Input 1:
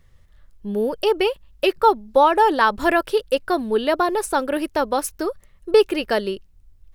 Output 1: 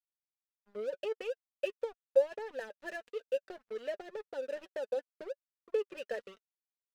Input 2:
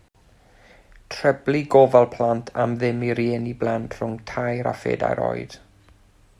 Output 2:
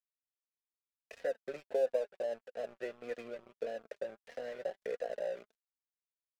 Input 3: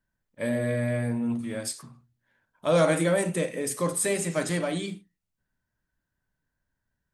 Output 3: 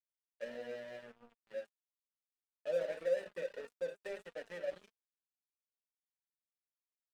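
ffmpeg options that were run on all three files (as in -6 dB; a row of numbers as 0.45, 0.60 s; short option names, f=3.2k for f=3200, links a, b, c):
-filter_complex "[0:a]adynamicequalizer=threshold=0.0316:dfrequency=880:dqfactor=1.2:tfrequency=880:tqfactor=1.2:attack=5:release=100:ratio=0.375:range=2:mode=boostabove:tftype=bell,acompressor=threshold=-25dB:ratio=2,asplit=3[a][b][c];[a]bandpass=f=530:t=q:w=8,volume=0dB[d];[b]bandpass=f=1.84k:t=q:w=8,volume=-6dB[e];[c]bandpass=f=2.48k:t=q:w=8,volume=-9dB[f];[d][e][f]amix=inputs=3:normalize=0,aeval=exprs='sgn(val(0))*max(abs(val(0))-0.00596,0)':c=same,flanger=delay=4:depth=1.4:regen=33:speed=1.6:shape=triangular,volume=1dB"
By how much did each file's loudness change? -17.5, -18.0, -14.5 LU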